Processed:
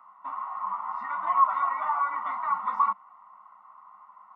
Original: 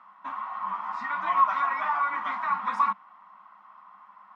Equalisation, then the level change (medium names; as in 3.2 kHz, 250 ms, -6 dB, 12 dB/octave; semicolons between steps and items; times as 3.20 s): Savitzky-Golay filter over 65 samples; tilt shelf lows -9.5 dB, about 800 Hz; 0.0 dB